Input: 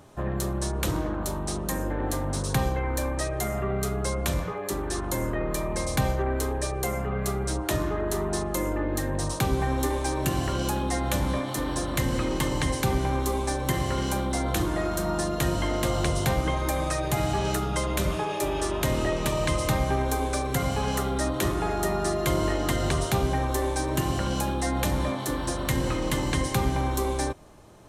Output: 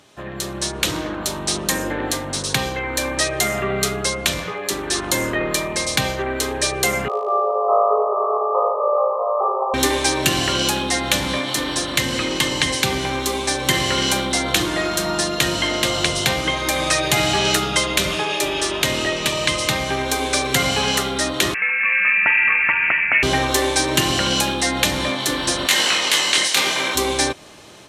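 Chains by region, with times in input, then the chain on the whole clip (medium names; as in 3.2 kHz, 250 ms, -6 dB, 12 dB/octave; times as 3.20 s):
7.08–9.74 s: brick-wall FIR band-pass 390–1300 Hz + flutter echo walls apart 3.2 m, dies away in 1.4 s
21.54–23.23 s: high-pass 830 Hz + frequency inversion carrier 3 kHz
25.66–26.94 s: spectral peaks clipped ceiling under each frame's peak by 18 dB + high-pass 380 Hz 6 dB/octave + detune thickener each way 28 cents
whole clip: frequency weighting D; level rider; trim -1 dB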